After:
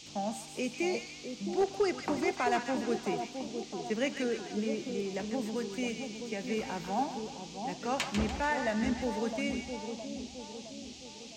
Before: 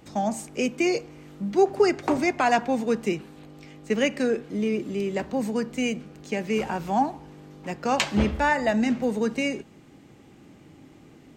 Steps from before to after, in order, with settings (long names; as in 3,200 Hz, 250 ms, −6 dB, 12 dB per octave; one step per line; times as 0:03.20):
echo with a time of its own for lows and highs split 960 Hz, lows 663 ms, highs 146 ms, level −6.5 dB
gain into a clipping stage and back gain 12 dB
noise in a band 2,400–6,800 Hz −42 dBFS
level −9 dB